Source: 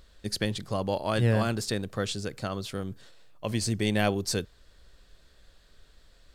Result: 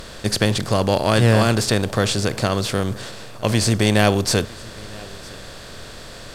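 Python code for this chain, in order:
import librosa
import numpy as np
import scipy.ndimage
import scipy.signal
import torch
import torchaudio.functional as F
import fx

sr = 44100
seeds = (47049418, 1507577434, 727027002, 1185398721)

p1 = fx.bin_compress(x, sr, power=0.6)
p2 = p1 + fx.echo_single(p1, sr, ms=960, db=-23.0, dry=0)
y = p2 * 10.0 ** (7.5 / 20.0)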